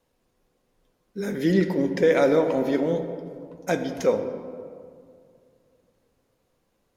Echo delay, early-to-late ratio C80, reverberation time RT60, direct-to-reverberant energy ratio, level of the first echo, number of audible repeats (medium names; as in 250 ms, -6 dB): no echo, 9.0 dB, 2.3 s, 6.5 dB, no echo, no echo